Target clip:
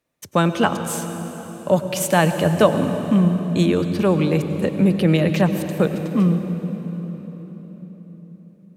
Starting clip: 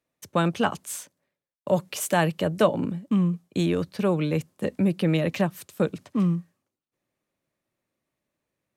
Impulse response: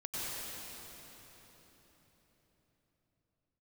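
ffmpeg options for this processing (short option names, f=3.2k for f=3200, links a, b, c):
-filter_complex "[0:a]asplit=2[a][b];[1:a]atrim=start_sample=2205,lowshelf=f=120:g=9[c];[b][c]afir=irnorm=-1:irlink=0,volume=-10.5dB[d];[a][d]amix=inputs=2:normalize=0,volume=4dB"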